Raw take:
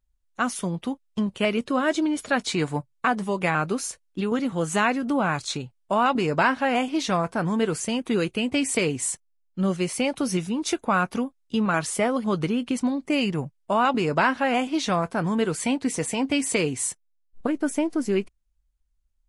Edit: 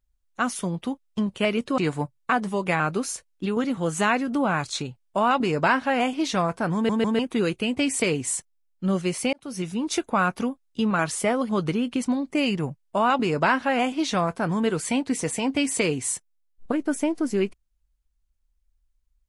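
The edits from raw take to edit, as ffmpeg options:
-filter_complex "[0:a]asplit=6[a][b][c][d][e][f];[a]atrim=end=1.782[g];[b]atrim=start=2.528:end=7.642[h];[c]atrim=start=7.488:end=7.642[i];[d]atrim=start=7.488:end=7.642[j];[e]atrim=start=7.938:end=10.08,asetpts=PTS-STARTPTS,afade=t=out:st=2.138:d=0.004:c=hsin[k];[f]atrim=start=10.08,asetpts=PTS-STARTPTS,afade=t=in:d=0.47[l];[g][h]acrossfade=d=0.004:c1=hsin:c2=hsin[m];[m][i]acrossfade=d=0.004:c1=hsin:c2=hsin[n];[n][j]acrossfade=d=0.004:c1=hsin:c2=hsin[o];[k][l]concat=n=2:v=0:a=1[p];[o][p]acrossfade=d=0.004:c1=hsin:c2=hsin"

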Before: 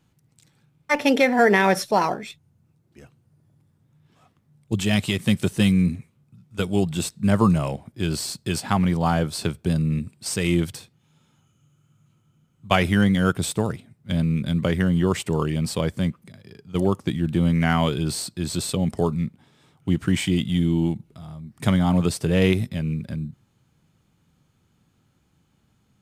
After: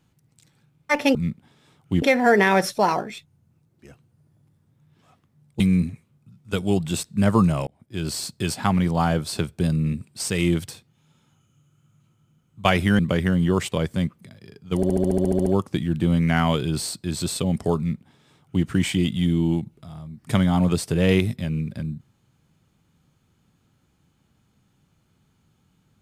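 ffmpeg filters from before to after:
-filter_complex "[0:a]asplit=17[a][b][c][d][e][f][g][h][i][j][k][l][m][n][o][p][q];[a]atrim=end=1.152[r];[b]atrim=start=19.108:end=19.982[s];[c]atrim=start=1.148:end=4.732[t];[d]atrim=start=5.658:end=7.73,asetpts=PTS-STARTPTS,afade=t=out:st=2.068:d=0.004:c=hsin[u];[e]atrim=start=7.73:end=13.052,asetpts=PTS-STARTPTS,afade=t=in:d=0.5[v];[f]atrim=start=14.528:end=15.262[w];[g]atrim=start=15.748:end=16.862[x];[h]atrim=start=16.788:end=16.862[y];[i]atrim=start=16.788:end=16.862[z];[j]atrim=start=16.788:end=16.862[aa];[k]atrim=start=16.788:end=16.862[ab];[l]atrim=start=16.788:end=16.862[ac];[m]atrim=start=16.788:end=16.862[ad];[n]atrim=start=16.788:end=16.862[ae];[o]atrim=start=16.788:end=16.862[af];[p]atrim=start=16.788:end=16.862[ag];[q]atrim=start=16.788[ah];[r][s]acrossfade=d=0.004:c1=hsin:c2=hsin[ai];[ai][t]acrossfade=d=0.004:c1=hsin:c2=hsin[aj];[u][v]concat=n=2:v=0:a=1[ak];[aj][ak]acrossfade=d=0.004:c1=hsin:c2=hsin[al];[al][w]acrossfade=d=0.004:c1=hsin:c2=hsin[am];[am][x]acrossfade=d=0.004:c1=hsin:c2=hsin[an];[an][y]acrossfade=d=0.004:c1=hsin:c2=hsin[ao];[ao][z]acrossfade=d=0.004:c1=hsin:c2=hsin[ap];[ap][aa]acrossfade=d=0.004:c1=hsin:c2=hsin[aq];[aq][ab]acrossfade=d=0.004:c1=hsin:c2=hsin[ar];[ar][ac]acrossfade=d=0.004:c1=hsin:c2=hsin[as];[as][ad]acrossfade=d=0.004:c1=hsin:c2=hsin[at];[at][ae]acrossfade=d=0.004:c1=hsin:c2=hsin[au];[au][af]acrossfade=d=0.004:c1=hsin:c2=hsin[av];[av][ag]acrossfade=d=0.004:c1=hsin:c2=hsin[aw];[aw][ah]acrossfade=d=0.004:c1=hsin:c2=hsin"

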